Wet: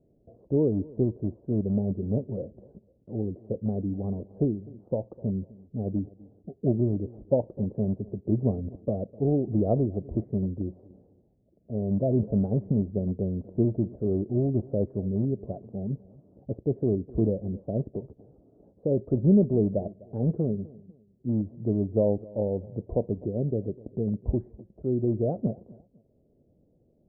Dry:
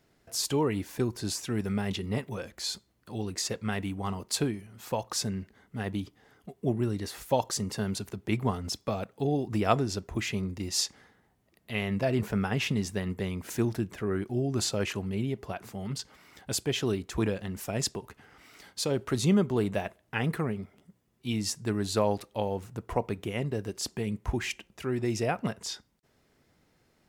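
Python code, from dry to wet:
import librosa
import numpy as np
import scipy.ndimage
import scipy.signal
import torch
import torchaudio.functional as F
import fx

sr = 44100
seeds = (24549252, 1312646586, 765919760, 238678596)

p1 = fx.rattle_buzz(x, sr, strikes_db=-27.0, level_db=-16.0)
p2 = scipy.signal.sosfilt(scipy.signal.ellip(4, 1.0, 80, 600.0, 'lowpass', fs=sr, output='sos'), p1)
p3 = p2 + fx.echo_feedback(p2, sr, ms=252, feedback_pct=32, wet_db=-22.0, dry=0)
y = F.gain(torch.from_numpy(p3), 4.5).numpy()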